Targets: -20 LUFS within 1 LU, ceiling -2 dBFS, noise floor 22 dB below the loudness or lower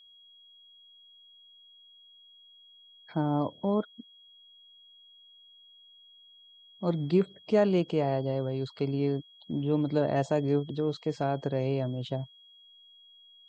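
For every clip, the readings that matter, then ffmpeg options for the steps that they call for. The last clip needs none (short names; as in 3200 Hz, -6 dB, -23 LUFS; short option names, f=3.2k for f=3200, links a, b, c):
steady tone 3300 Hz; tone level -54 dBFS; loudness -29.5 LUFS; peak -13.0 dBFS; loudness target -20.0 LUFS
-> -af "bandreject=f=3.3k:w=30"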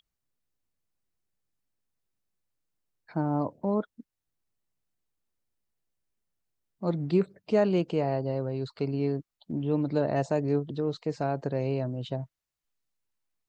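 steady tone none; loudness -29.5 LUFS; peak -13.0 dBFS; loudness target -20.0 LUFS
-> -af "volume=9.5dB"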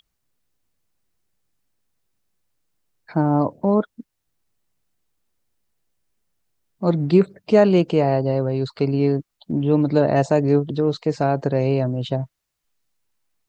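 loudness -20.0 LUFS; peak -3.5 dBFS; noise floor -78 dBFS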